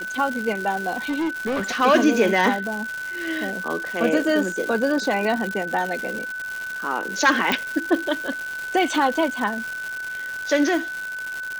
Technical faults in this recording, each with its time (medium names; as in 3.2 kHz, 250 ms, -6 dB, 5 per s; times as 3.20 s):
crackle 340 per s -26 dBFS
whine 1.5 kHz -28 dBFS
0.93–1.81 s: clipped -21 dBFS
7.52 s: pop